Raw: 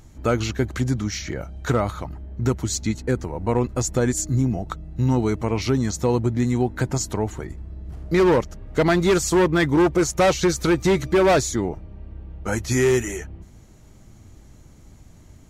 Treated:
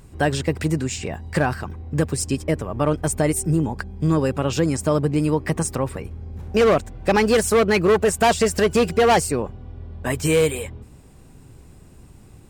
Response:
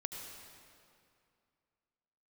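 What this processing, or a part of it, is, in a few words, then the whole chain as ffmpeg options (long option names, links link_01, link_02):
nightcore: -af "asetrate=54684,aresample=44100,volume=1dB"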